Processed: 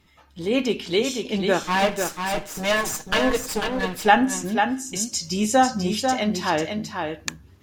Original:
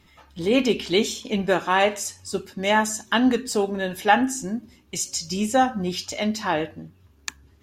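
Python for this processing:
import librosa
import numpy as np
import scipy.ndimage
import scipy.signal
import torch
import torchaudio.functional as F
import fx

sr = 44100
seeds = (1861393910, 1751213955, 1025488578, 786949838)

y = fx.lower_of_two(x, sr, delay_ms=6.4, at=(1.63, 4.04))
y = fx.rider(y, sr, range_db=4, speed_s=2.0)
y = y + 10.0 ** (-5.5 / 20.0) * np.pad(y, (int(494 * sr / 1000.0), 0))[:len(y)]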